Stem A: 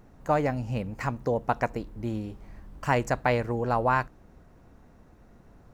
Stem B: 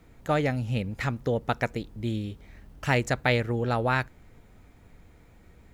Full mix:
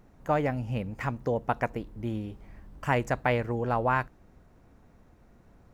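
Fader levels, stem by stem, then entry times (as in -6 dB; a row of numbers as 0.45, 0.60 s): -3.5, -14.5 dB; 0.00, 0.00 s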